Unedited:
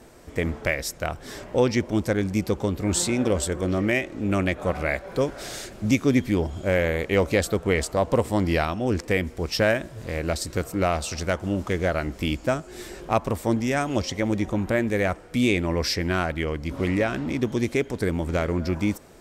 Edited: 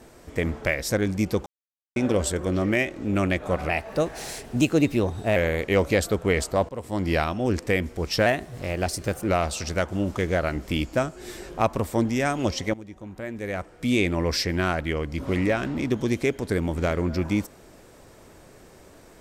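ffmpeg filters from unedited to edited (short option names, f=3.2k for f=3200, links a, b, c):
-filter_complex "[0:a]asplit=10[a][b][c][d][e][f][g][h][i][j];[a]atrim=end=0.902[k];[b]atrim=start=2.058:end=2.62,asetpts=PTS-STARTPTS,afade=t=out:st=0.558:d=0.004:c=hsin[l];[c]atrim=start=2.62:end=3.12,asetpts=PTS-STARTPTS,volume=0[m];[d]atrim=start=3.12:end=4.854,asetpts=PTS-STARTPTS,afade=t=in:d=0.004:c=hsin[n];[e]atrim=start=4.85:end=6.77,asetpts=PTS-STARTPTS,asetrate=50715,aresample=44100[o];[f]atrim=start=6.766:end=8.1,asetpts=PTS-STARTPTS,afade=t=out:st=1.33:d=0.004:c=hsin:silence=0.0841395[p];[g]atrim=start=8.1:end=9.674,asetpts=PTS-STARTPTS,afade=t=in:d=0.49:silence=0.0841395[q];[h]atrim=start=9.67:end=10.79,asetpts=PTS-STARTPTS,asetrate=48510,aresample=44100[r];[i]atrim=start=10.786:end=14.25,asetpts=PTS-STARTPTS,afade=t=out:st=3.46:d=0.004:c=hsin:silence=0.141254[s];[j]atrim=start=14.25,asetpts=PTS-STARTPTS,afade=t=in:d=1.29:c=qua:silence=0.141254[t];[l][m][n]concat=n=3:v=0:a=1[u];[k][u]acrossfade=d=0.004:c1=hsin:c2=hsin[v];[v][o]acrossfade=d=0.004:c1=hsin:c2=hsin[w];[p][q]concat=n=2:v=0:a=1[x];[w][x]acrossfade=d=0.004:c1=hsin:c2=hsin[y];[y][r]acrossfade=d=0.004:c1=hsin:c2=hsin[z];[s][t]concat=n=2:v=0:a=1[aa];[z][aa]acrossfade=d=0.004:c1=hsin:c2=hsin"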